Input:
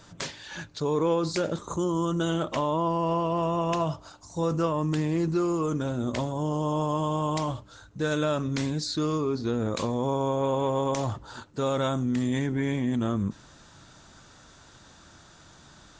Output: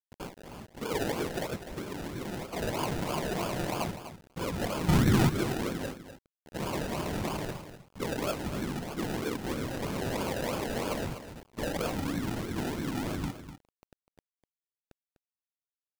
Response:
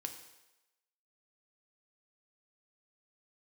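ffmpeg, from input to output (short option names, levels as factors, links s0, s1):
-filter_complex "[0:a]asplit=3[s0][s1][s2];[s0]afade=t=out:st=5.9:d=0.02[s3];[s1]agate=range=0.0282:threshold=0.0708:ratio=16:detection=peak,afade=t=in:st=5.9:d=0.02,afade=t=out:st=6.54:d=0.02[s4];[s2]afade=t=in:st=6.54:d=0.02[s5];[s3][s4][s5]amix=inputs=3:normalize=0,bandreject=f=71.85:t=h:w=4,bandreject=f=143.7:t=h:w=4,bandreject=f=215.55:t=h:w=4,bandreject=f=287.4:t=h:w=4,bandreject=f=359.25:t=h:w=4,bandreject=f=431.1:t=h:w=4,bandreject=f=502.95:t=h:w=4,bandreject=f=574.8:t=h:w=4,bandreject=f=646.65:t=h:w=4,bandreject=f=718.5:t=h:w=4,bandreject=f=790.35:t=h:w=4,asettb=1/sr,asplit=3[s6][s7][s8];[s6]atrim=end=1.624[s9];[s7]atrim=start=1.62:end=2.49,asetpts=PTS-STARTPTS,afade=t=in:d=0.004:c=qsin,afade=t=out:st=0.866:d=0.004:c=qsin,acompressor=threshold=0.0282:ratio=2.5[s10];[s8]atrim=start=2.486[s11];[s9][s10]acrossfade=d=0.004:c1=hsin:c2=qsin[s12];[s12][s11]acrossfade=d=0.004:c1=qsin:c2=hsin,asplit=3[s13][s14][s15];[s13]afade=t=out:st=4.88:d=0.02[s16];[s14]asubboost=boost=11.5:cutoff=210,afade=t=in:st=4.88:d=0.02,afade=t=out:st=5.28:d=0.02[s17];[s15]afade=t=in:st=5.28:d=0.02[s18];[s16][s17][s18]amix=inputs=3:normalize=0,afftfilt=real='hypot(re,im)*cos(2*PI*random(0))':imag='hypot(re,im)*sin(2*PI*random(1))':win_size=512:overlap=0.75,acrusher=samples=32:mix=1:aa=0.000001:lfo=1:lforange=19.2:lforate=3.1,asoftclip=type=tanh:threshold=0.133,acrusher=bits=7:mix=0:aa=0.000001,aecho=1:1:249:0.266"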